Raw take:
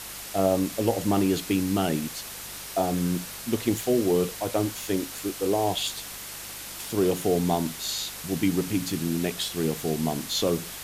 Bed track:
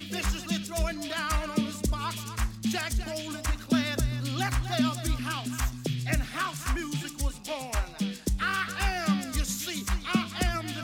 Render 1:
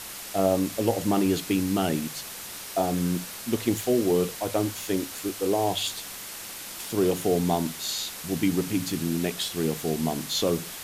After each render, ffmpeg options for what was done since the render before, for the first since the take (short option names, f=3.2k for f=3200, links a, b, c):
-af "bandreject=f=50:t=h:w=4,bandreject=f=100:t=h:w=4,bandreject=f=150:t=h:w=4"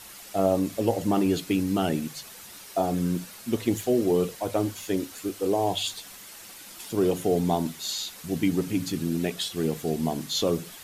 -af "afftdn=nr=8:nf=-39"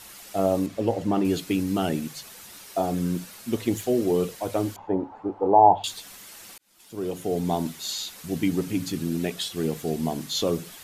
-filter_complex "[0:a]asettb=1/sr,asplit=3[a][b][c];[a]atrim=end=0.664[d];[b]atrim=start=0.66:end=1.25,asetpts=PTS-STARTPTS,afade=t=in:d=0.004:c=qsin,afade=t=out:st=0.586:d=0.004:c=qsin,aemphasis=mode=reproduction:type=50kf[e];[c]atrim=start=1.246[f];[d][e]acrossfade=d=0.004:c1=hsin:c2=qsin[g];[g][f]acrossfade=d=0.004:c1=qsin:c2=hsin,asettb=1/sr,asplit=3[h][i][j];[h]atrim=end=4.764[k];[i]atrim=start=4.76:end=5.84,asetpts=PTS-STARTPTS,afade=t=in:d=0.004:c=qsin,afade=t=out:st=1.076:d=0.004:c=qsin,lowpass=f=860:t=q:w=10[l];[j]atrim=start=5.836[m];[k][l]acrossfade=d=0.004:c1=hsin:c2=qsin[n];[n][m]acrossfade=d=0.004:c1=qsin:c2=hsin,asplit=2[o][p];[o]atrim=end=6.58,asetpts=PTS-STARTPTS,afade=t=out:st=6.576:d=0.004:c=hsin[q];[p]atrim=start=6.58,asetpts=PTS-STARTPTS,afade=t=in:d=1.04[r];[q][r]concat=n=2:v=0:a=1"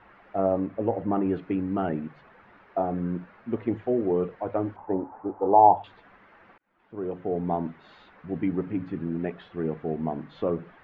-af "lowpass=f=1.8k:w=0.5412,lowpass=f=1.8k:w=1.3066,lowshelf=f=350:g=-4"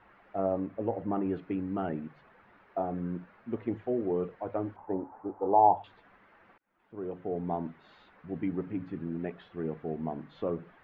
-af "volume=-5.5dB"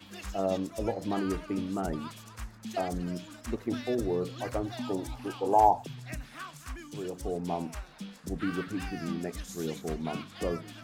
-filter_complex "[1:a]volume=-12dB[a];[0:a][a]amix=inputs=2:normalize=0"